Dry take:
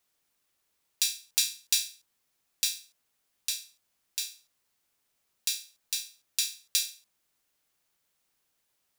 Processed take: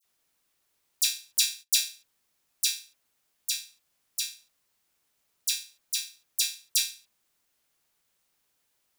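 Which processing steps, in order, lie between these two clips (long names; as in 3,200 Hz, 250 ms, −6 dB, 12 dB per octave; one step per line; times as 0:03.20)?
all-pass dispersion lows, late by 45 ms, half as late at 2,900 Hz
0:01.46–0:01.88: noise gate −47 dBFS, range −21 dB
level +2 dB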